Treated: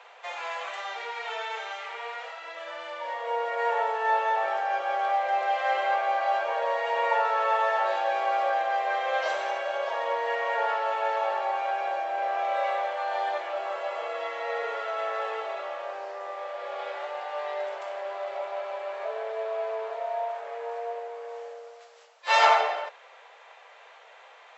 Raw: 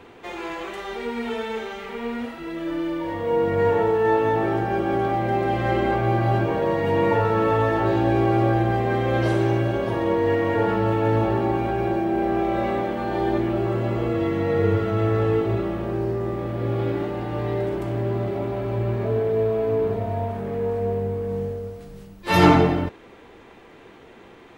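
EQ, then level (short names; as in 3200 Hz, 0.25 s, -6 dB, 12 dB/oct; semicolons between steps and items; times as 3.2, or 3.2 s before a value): steep high-pass 550 Hz 48 dB/oct; brick-wall FIR low-pass 7800 Hz; 0.0 dB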